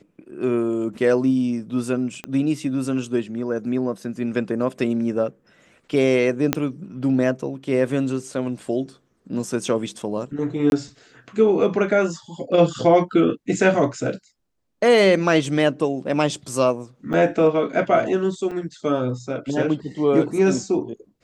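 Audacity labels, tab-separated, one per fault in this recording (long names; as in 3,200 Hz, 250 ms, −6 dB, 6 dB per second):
2.240000	2.240000	click −16 dBFS
6.530000	6.530000	click −4 dBFS
10.700000	10.720000	drop-out 21 ms
17.130000	17.140000	drop-out 7.4 ms
18.510000	18.510000	drop-out 4.9 ms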